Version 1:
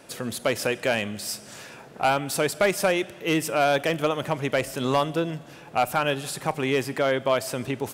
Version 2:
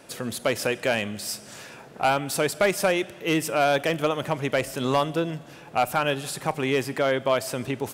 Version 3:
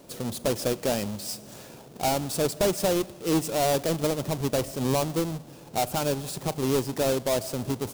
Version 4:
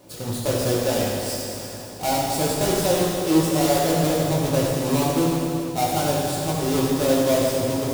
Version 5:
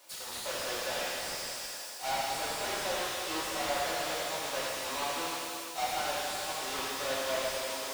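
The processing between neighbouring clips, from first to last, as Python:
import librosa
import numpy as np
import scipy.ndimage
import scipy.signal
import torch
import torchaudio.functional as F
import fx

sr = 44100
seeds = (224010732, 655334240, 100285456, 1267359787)

y1 = x
y2 = fx.halfwave_hold(y1, sr)
y2 = fx.peak_eq(y2, sr, hz=1800.0, db=-10.5, octaves=1.7)
y2 = y2 * 10.0 ** (-4.0 / 20.0)
y3 = fx.rev_fdn(y2, sr, rt60_s=2.9, lf_ratio=1.0, hf_ratio=0.9, size_ms=55.0, drr_db=-6.5)
y3 = y3 * 10.0 ** (-2.0 / 20.0)
y4 = scipy.signal.sosfilt(scipy.signal.butter(2, 1200.0, 'highpass', fs=sr, output='sos'), y3)
y4 = fx.slew_limit(y4, sr, full_power_hz=80.0)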